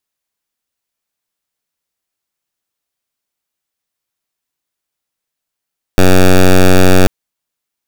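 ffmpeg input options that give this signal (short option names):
-f lavfi -i "aevalsrc='0.596*(2*lt(mod(92.5*t,1),0.09)-1)':d=1.09:s=44100"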